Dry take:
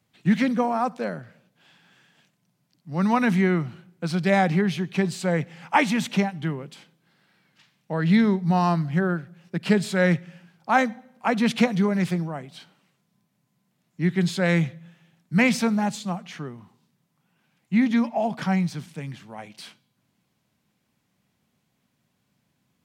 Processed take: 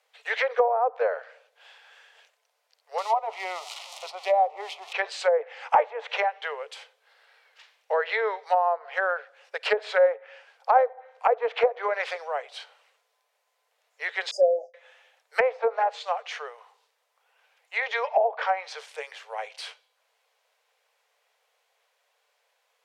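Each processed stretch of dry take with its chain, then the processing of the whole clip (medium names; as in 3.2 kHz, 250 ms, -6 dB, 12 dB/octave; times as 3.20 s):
2.98–4.93 s: zero-crossing glitches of -17.5 dBFS + static phaser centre 320 Hz, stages 8
14.31–14.74 s: comb 3.3 ms, depth 86% + expander -30 dBFS + brick-wall FIR band-stop 820–4700 Hz
whole clip: Chebyshev high-pass 440 Hz, order 8; low-pass that closes with the level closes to 660 Hz, closed at -23 dBFS; treble shelf 5.9 kHz -6.5 dB; trim +6.5 dB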